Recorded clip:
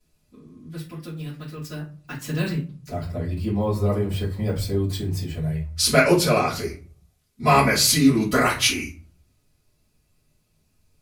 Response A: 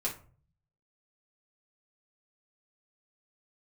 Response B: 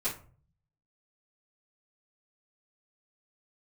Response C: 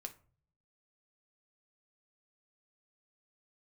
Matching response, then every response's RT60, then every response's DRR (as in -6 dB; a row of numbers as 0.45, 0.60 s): B; 0.40, 0.40, 0.45 s; -4.5, -13.0, 5.0 dB